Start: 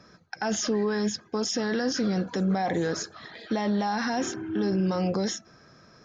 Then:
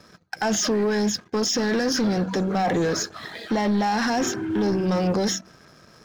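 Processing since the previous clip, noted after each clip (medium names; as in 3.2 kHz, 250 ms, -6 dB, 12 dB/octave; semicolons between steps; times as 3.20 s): de-hum 63.1 Hz, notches 5; waveshaping leveller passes 2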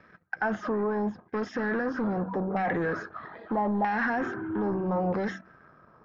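LFO low-pass saw down 0.78 Hz 840–2000 Hz; trim -7 dB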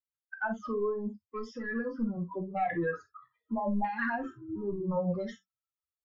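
expander on every frequency bin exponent 3; reverberation, pre-delay 5 ms, DRR 4 dB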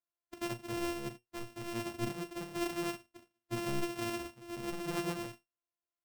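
sorted samples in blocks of 128 samples; feedback comb 120 Hz, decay 0.16 s, harmonics all, mix 70%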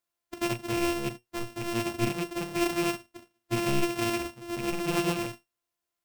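rattle on loud lows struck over -43 dBFS, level -37 dBFS; trim +8.5 dB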